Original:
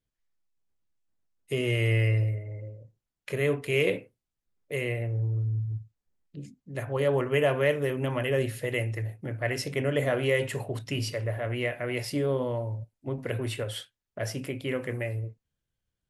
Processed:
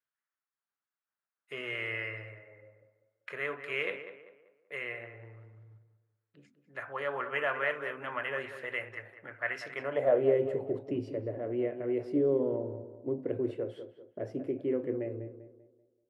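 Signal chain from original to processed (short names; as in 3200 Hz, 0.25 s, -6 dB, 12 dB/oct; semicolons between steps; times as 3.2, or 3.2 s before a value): band-pass sweep 1400 Hz -> 350 Hz, 9.75–10.3; tape echo 0.194 s, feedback 42%, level -9.5 dB, low-pass 1800 Hz; gain +4.5 dB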